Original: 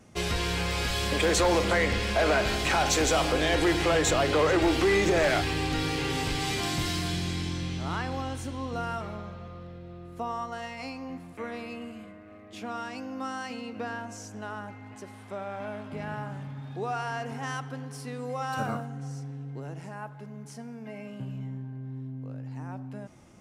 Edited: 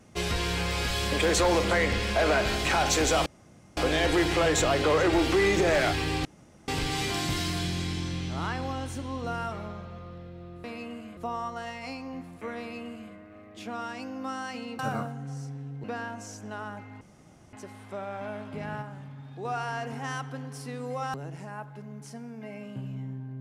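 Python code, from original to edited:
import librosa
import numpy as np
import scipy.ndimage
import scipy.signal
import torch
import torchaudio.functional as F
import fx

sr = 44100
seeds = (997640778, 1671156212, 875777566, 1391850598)

y = fx.edit(x, sr, fx.insert_room_tone(at_s=3.26, length_s=0.51),
    fx.room_tone_fill(start_s=5.74, length_s=0.43),
    fx.duplicate(start_s=11.55, length_s=0.53, to_s=10.13),
    fx.insert_room_tone(at_s=14.92, length_s=0.52),
    fx.clip_gain(start_s=16.21, length_s=0.63, db=-4.5),
    fx.move(start_s=18.53, length_s=1.05, to_s=13.75), tone=tone)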